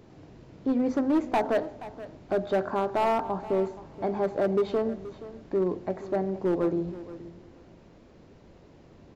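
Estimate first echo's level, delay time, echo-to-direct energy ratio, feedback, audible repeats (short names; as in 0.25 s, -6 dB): -16.0 dB, 0.476 s, -16.0 dB, 16%, 2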